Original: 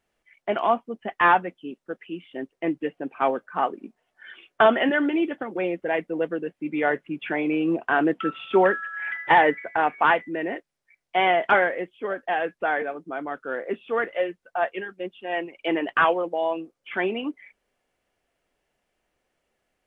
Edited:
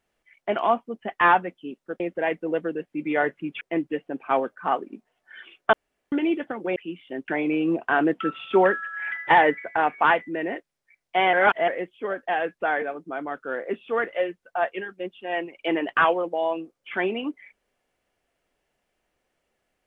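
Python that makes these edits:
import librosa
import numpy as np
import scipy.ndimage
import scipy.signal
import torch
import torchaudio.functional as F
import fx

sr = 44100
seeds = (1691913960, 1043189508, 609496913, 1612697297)

y = fx.edit(x, sr, fx.swap(start_s=2.0, length_s=0.52, other_s=5.67, other_length_s=1.61),
    fx.room_tone_fill(start_s=4.64, length_s=0.39),
    fx.reverse_span(start_s=11.33, length_s=0.35), tone=tone)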